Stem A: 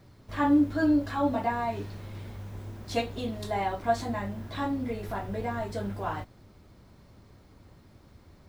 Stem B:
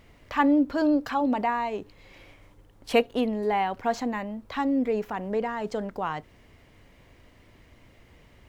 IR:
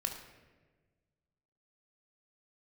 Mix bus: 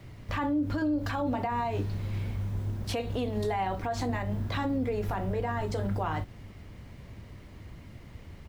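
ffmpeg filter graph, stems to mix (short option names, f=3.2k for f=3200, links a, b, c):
-filter_complex "[0:a]bass=f=250:g=9,treble=f=4k:g=0,volume=0dB[a];[1:a]adelay=1,volume=1dB[b];[a][b]amix=inputs=2:normalize=0,alimiter=limit=-22dB:level=0:latency=1:release=119"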